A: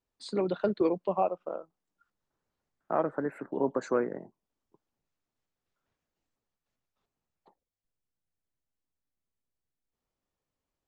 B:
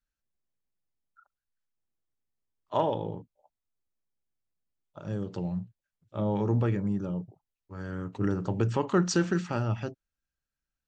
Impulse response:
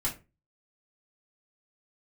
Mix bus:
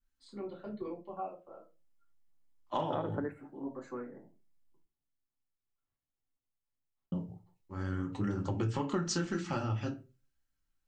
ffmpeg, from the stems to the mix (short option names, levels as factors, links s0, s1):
-filter_complex "[0:a]volume=0.794,asplit=2[s0][s1];[s1]volume=0.141[s2];[1:a]flanger=delay=0.1:depth=7.9:regen=-39:speed=1.9:shape=triangular,adynamicequalizer=threshold=0.00282:dfrequency=2100:dqfactor=0.7:tfrequency=2100:tqfactor=0.7:attack=5:release=100:ratio=0.375:range=2:mode=boostabove:tftype=highshelf,volume=0.944,asplit=3[s3][s4][s5];[s3]atrim=end=4.85,asetpts=PTS-STARTPTS,afade=t=out:st=4.846:d=0.004:c=hsin[s6];[s4]atrim=start=4.85:end=7.12,asetpts=PTS-STARTPTS,volume=0[s7];[s5]atrim=start=7.12,asetpts=PTS-STARTPTS,afade=t=in:d=0.004:c=hsin[s8];[s6][s7][s8]concat=n=3:v=0:a=1,asplit=3[s9][s10][s11];[s10]volume=0.668[s12];[s11]apad=whole_len=479746[s13];[s0][s13]sidechaingate=range=0.0224:threshold=0.00158:ratio=16:detection=peak[s14];[2:a]atrim=start_sample=2205[s15];[s2][s12]amix=inputs=2:normalize=0[s16];[s16][s15]afir=irnorm=-1:irlink=0[s17];[s14][s9][s17]amix=inputs=3:normalize=0,acompressor=threshold=0.0282:ratio=4"